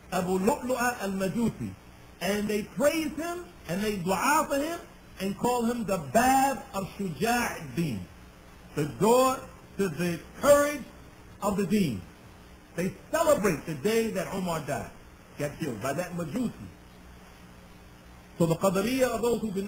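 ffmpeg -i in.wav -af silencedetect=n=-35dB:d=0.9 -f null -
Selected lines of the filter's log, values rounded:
silence_start: 16.66
silence_end: 18.40 | silence_duration: 1.74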